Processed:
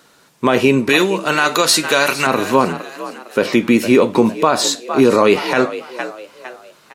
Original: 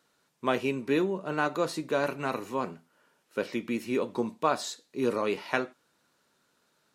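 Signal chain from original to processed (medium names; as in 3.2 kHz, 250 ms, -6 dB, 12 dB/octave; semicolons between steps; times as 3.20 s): 0.89–2.27 s: tilt shelf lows -9.5 dB, about 1.2 kHz; on a send: frequency-shifting echo 457 ms, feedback 39%, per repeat +57 Hz, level -16.5 dB; on the sum: loudness maximiser +20.5 dB; trim -1 dB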